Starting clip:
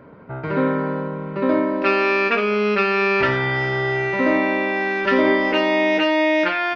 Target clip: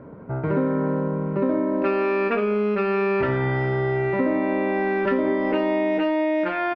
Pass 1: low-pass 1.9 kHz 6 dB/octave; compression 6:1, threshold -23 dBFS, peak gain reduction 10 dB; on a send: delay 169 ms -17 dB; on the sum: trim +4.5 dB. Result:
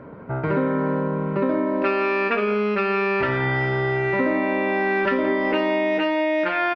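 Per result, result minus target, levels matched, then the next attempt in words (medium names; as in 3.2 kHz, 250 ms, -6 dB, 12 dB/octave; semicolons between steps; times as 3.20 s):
echo-to-direct +10.5 dB; 2 kHz band +4.5 dB
low-pass 1.9 kHz 6 dB/octave; compression 6:1, threshold -23 dBFS, peak gain reduction 10 dB; on a send: delay 169 ms -27.5 dB; on the sum: trim +4.5 dB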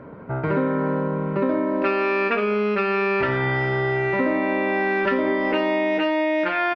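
2 kHz band +4.5 dB
low-pass 620 Hz 6 dB/octave; compression 6:1, threshold -23 dBFS, peak gain reduction 9 dB; on a send: delay 169 ms -27.5 dB; on the sum: trim +4.5 dB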